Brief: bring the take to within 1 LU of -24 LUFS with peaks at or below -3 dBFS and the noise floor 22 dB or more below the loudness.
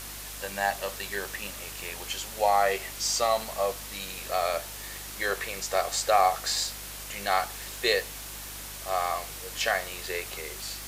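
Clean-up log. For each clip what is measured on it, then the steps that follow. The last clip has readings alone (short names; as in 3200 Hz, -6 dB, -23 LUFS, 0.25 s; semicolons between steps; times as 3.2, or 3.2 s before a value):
hum 50 Hz; harmonics up to 350 Hz; hum level -45 dBFS; noise floor -40 dBFS; noise floor target -51 dBFS; loudness -29.0 LUFS; peak -9.5 dBFS; loudness target -24.0 LUFS
-> de-hum 50 Hz, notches 7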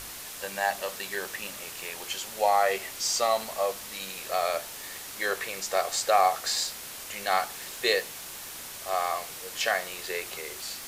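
hum none; noise floor -41 dBFS; noise floor target -51 dBFS
-> denoiser 10 dB, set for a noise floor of -41 dBFS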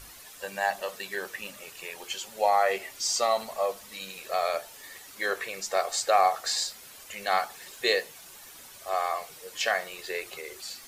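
noise floor -48 dBFS; noise floor target -51 dBFS
-> denoiser 6 dB, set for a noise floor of -48 dBFS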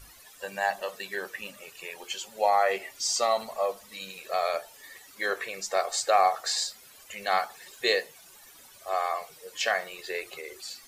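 noise floor -53 dBFS; loudness -29.0 LUFS; peak -9.5 dBFS; loudness target -24.0 LUFS
-> gain +5 dB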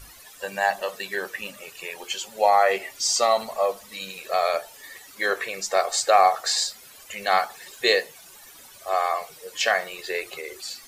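loudness -24.0 LUFS; peak -4.5 dBFS; noise floor -48 dBFS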